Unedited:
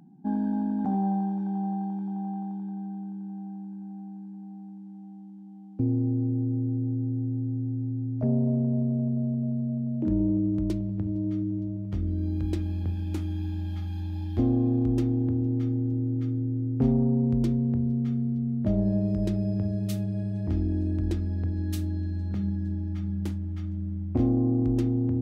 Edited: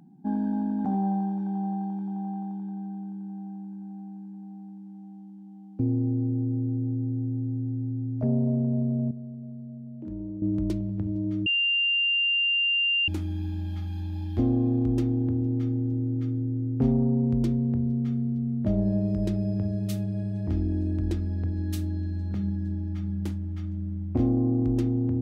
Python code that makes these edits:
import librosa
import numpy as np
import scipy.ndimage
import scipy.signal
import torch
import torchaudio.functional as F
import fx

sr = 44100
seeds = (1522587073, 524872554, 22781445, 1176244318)

y = fx.edit(x, sr, fx.clip_gain(start_s=9.11, length_s=1.31, db=-11.0),
    fx.bleep(start_s=11.46, length_s=1.62, hz=2790.0, db=-21.0), tone=tone)